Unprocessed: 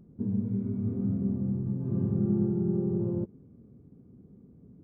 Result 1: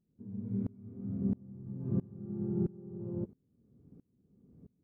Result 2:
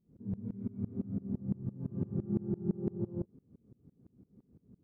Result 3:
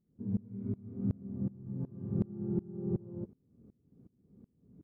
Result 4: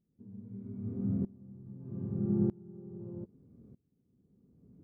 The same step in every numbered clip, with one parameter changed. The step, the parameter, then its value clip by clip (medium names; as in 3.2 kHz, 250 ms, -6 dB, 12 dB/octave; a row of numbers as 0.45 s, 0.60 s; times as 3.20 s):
sawtooth tremolo in dB, rate: 1.5 Hz, 5.9 Hz, 2.7 Hz, 0.8 Hz